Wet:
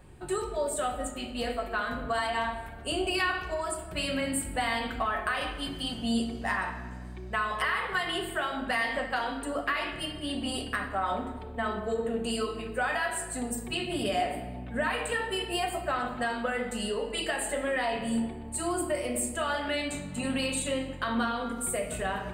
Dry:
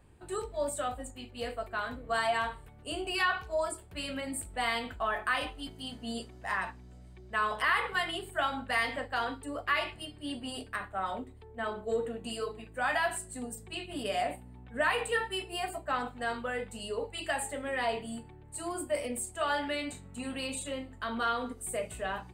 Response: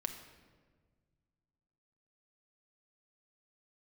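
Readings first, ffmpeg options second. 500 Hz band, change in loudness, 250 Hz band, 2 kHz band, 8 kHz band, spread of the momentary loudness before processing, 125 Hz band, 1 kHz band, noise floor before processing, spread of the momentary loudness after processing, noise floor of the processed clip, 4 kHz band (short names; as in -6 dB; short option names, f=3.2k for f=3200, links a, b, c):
+3.0 dB, +3.0 dB, +7.5 dB, +1.5 dB, +5.5 dB, 11 LU, +6.5 dB, +2.0 dB, -52 dBFS, 5 LU, -40 dBFS, +3.5 dB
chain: -filter_complex "[0:a]acompressor=threshold=-35dB:ratio=6[a];[1:a]atrim=start_sample=2205[b];[a][b]afir=irnorm=-1:irlink=0,volume=8.5dB"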